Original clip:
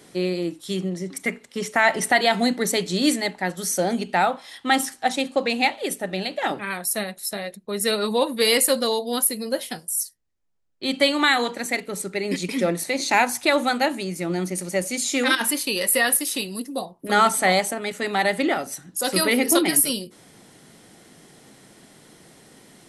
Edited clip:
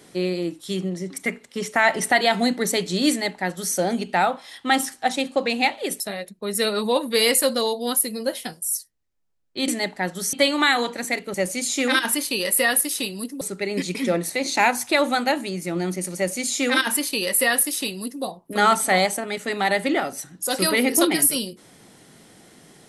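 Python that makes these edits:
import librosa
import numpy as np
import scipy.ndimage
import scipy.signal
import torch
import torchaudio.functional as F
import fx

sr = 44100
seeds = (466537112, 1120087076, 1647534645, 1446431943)

y = fx.edit(x, sr, fx.duplicate(start_s=3.1, length_s=0.65, to_s=10.94),
    fx.cut(start_s=6.0, length_s=1.26),
    fx.duplicate(start_s=14.7, length_s=2.07, to_s=11.95), tone=tone)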